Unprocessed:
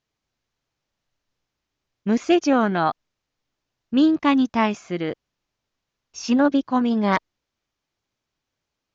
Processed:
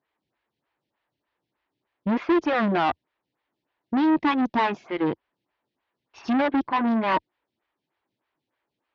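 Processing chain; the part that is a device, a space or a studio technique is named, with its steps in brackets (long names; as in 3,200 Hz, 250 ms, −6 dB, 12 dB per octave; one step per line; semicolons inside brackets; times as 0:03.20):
vibe pedal into a guitar amplifier (phaser with staggered stages 3.3 Hz; tube saturation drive 28 dB, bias 0.65; loudspeaker in its box 78–3,900 Hz, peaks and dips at 86 Hz −7 dB, 330 Hz +4 dB, 930 Hz +5 dB, 1,800 Hz +4 dB)
level +7.5 dB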